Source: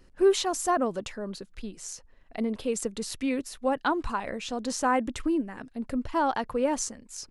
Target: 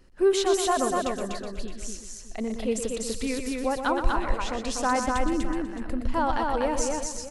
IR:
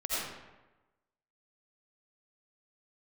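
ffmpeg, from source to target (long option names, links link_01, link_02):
-filter_complex "[0:a]asplit=2[link_01][link_02];[link_02]aecho=0:1:119.5|244.9:0.398|0.708[link_03];[link_01][link_03]amix=inputs=2:normalize=0,asubboost=boost=5:cutoff=86,asplit=2[link_04][link_05];[link_05]aecho=0:1:371|742:0.251|0.0377[link_06];[link_04][link_06]amix=inputs=2:normalize=0"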